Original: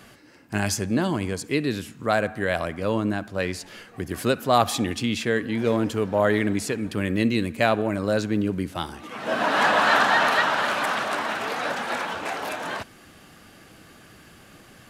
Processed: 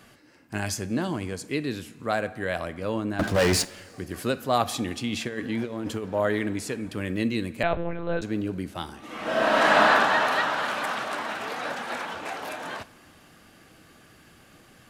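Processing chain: 3.19–3.65 sample leveller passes 5; 5.08–6.04 negative-ratio compressor -25 dBFS, ratio -0.5; two-slope reverb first 0.29 s, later 3 s, from -18 dB, DRR 14 dB; 7.63–8.22 monotone LPC vocoder at 8 kHz 170 Hz; 8.98–9.81 reverb throw, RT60 2.4 s, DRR -5.5 dB; gain -4.5 dB

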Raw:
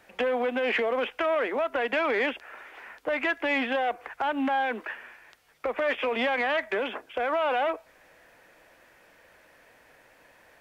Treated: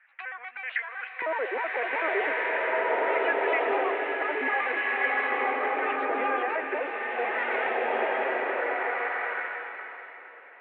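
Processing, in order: trilling pitch shifter +7 st, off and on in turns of 63 ms; LFO high-pass square 0.41 Hz 380–1700 Hz; elliptic band-pass 100–2200 Hz, stop band 40 dB; low shelf 240 Hz -9 dB; bloom reverb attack 1.74 s, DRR -6 dB; gain -5 dB

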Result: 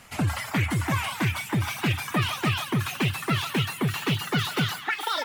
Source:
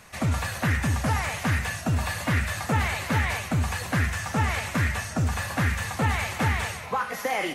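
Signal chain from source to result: speed glide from 113% -> 175%; reverb removal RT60 0.82 s; delay with a stepping band-pass 0.145 s, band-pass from 1000 Hz, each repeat 0.7 oct, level -5 dB

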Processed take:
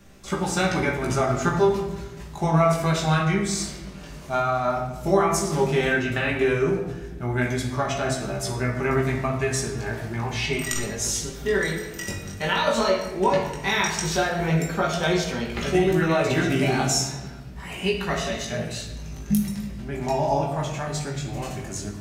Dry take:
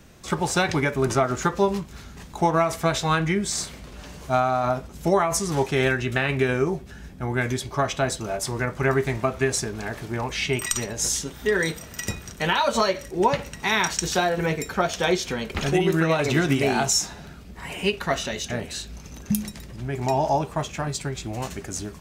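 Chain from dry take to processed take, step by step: chorus 0.12 Hz, delay 15.5 ms, depth 6 ms; shoebox room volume 620 m³, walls mixed, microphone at 1.2 m

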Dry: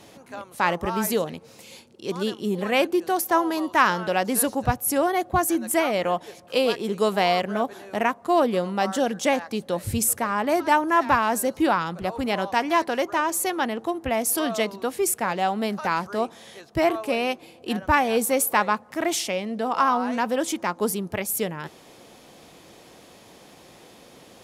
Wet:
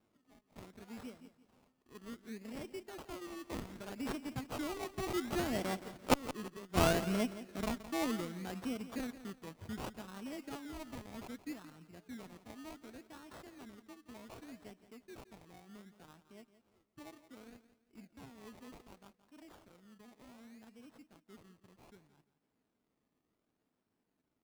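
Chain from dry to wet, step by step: Doppler pass-by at 6.37, 23 m/s, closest 1.5 m; HPF 82 Hz 12 dB/oct; band shelf 750 Hz -11 dB; transient shaper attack -1 dB, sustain -6 dB; small resonant body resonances 250/450/640 Hz, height 7 dB; decimation with a swept rate 23×, swing 60% 0.66 Hz; flipped gate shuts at -30 dBFS, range -30 dB; feedback echo 0.171 s, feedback 30%, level -14 dB; running maximum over 3 samples; gain +14 dB

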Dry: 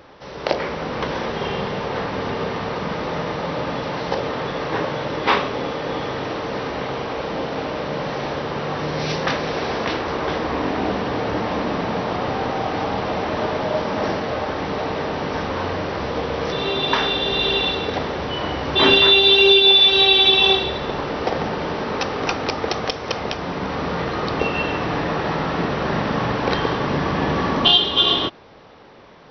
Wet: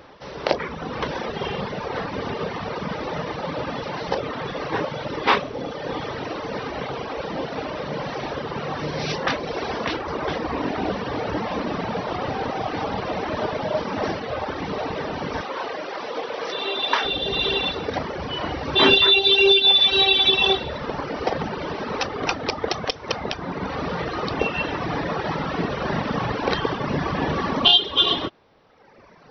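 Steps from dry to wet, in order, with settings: reverb removal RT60 1.5 s; 15.41–17.05 HPF 400 Hz 12 dB/oct

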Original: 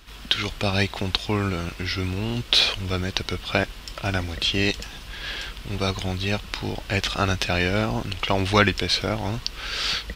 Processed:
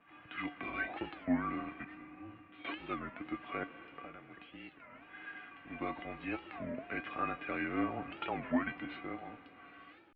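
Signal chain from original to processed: ending faded out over 2.16 s; limiter -13 dBFS, peak gain reduction 11 dB; 3.8–5.52 compressor 12:1, threshold -33 dBFS, peak gain reduction 14 dB; resonator 430 Hz, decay 0.2 s, harmonics all, mix 90%; 0.66–0.92 spectral repair 210–1100 Hz; 1.84–2.65 resonator 220 Hz, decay 0.41 s, harmonics all, mix 90%; vibrato 1 Hz 47 cents; digital reverb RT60 4.4 s, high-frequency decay 0.95×, pre-delay 80 ms, DRR 14 dB; mistuned SSB -130 Hz 270–2500 Hz; record warp 33 1/3 rpm, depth 250 cents; gain +4 dB

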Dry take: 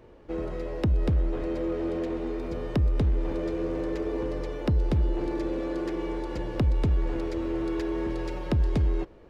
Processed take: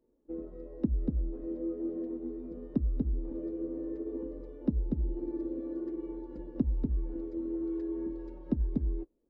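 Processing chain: fifteen-band EQ 100 Hz -11 dB, 250 Hz +9 dB, 2500 Hz -4 dB; transient shaper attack +2 dB, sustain -3 dB; spectral expander 1.5:1; gain -7.5 dB

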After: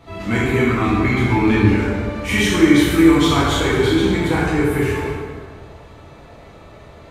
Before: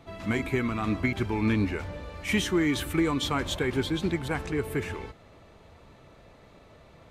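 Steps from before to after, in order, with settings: plate-style reverb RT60 1.8 s, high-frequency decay 0.6×, DRR -8 dB; gain +3 dB

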